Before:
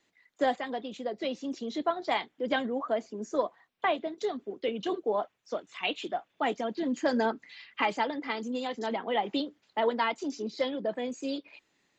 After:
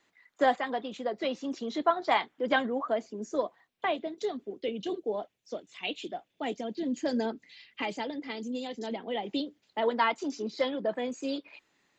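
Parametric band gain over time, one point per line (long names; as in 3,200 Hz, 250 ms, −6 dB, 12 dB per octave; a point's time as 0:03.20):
parametric band 1,200 Hz 1.5 octaves
0:02.55 +6 dB
0:03.20 −4 dB
0:04.36 −4 dB
0:04.85 −11.5 dB
0:09.20 −11.5 dB
0:09.80 −4 dB
0:10.02 +3.5 dB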